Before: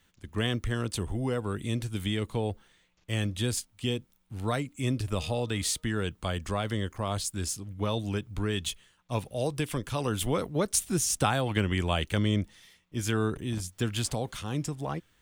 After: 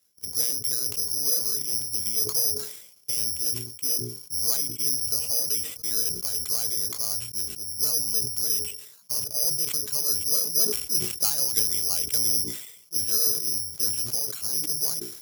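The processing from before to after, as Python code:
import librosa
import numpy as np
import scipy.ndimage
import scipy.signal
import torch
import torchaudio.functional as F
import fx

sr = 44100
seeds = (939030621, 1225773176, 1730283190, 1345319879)

p1 = fx.pitch_trill(x, sr, semitones=1.5, every_ms=72)
p2 = fx.recorder_agc(p1, sr, target_db=-21.5, rise_db_per_s=17.0, max_gain_db=30)
p3 = fx.peak_eq(p2, sr, hz=440.0, db=9.5, octaves=0.52)
p4 = fx.notch(p3, sr, hz=1800.0, q=7.6)
p5 = (np.kron(scipy.signal.resample_poly(p4, 1, 8), np.eye(8)[0]) * 8)[:len(p4)]
p6 = fx.high_shelf(p5, sr, hz=2700.0, db=7.5)
p7 = fx.fuzz(p6, sr, gain_db=22.0, gate_db=-29.0)
p8 = p6 + F.gain(torch.from_numpy(p7), -7.5).numpy()
p9 = scipy.signal.sosfilt(scipy.signal.butter(2, 78.0, 'highpass', fs=sr, output='sos'), p8)
p10 = fx.hum_notches(p9, sr, base_hz=60, count=7)
p11 = fx.sustainer(p10, sr, db_per_s=70.0)
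y = F.gain(torch.from_numpy(p11), -15.5).numpy()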